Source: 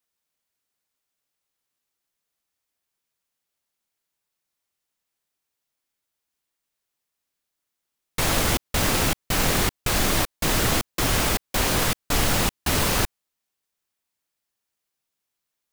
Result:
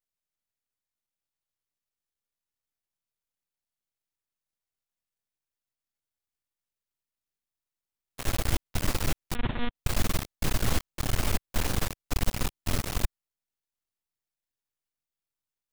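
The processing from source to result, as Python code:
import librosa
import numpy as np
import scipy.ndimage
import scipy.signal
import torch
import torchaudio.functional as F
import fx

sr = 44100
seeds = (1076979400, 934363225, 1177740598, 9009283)

y = fx.low_shelf(x, sr, hz=150.0, db=11.5)
y = np.maximum(y, 0.0)
y = fx.lpc_monotone(y, sr, seeds[0], pitch_hz=240.0, order=10, at=(9.35, 9.75))
y = F.gain(torch.from_numpy(y), -7.5).numpy()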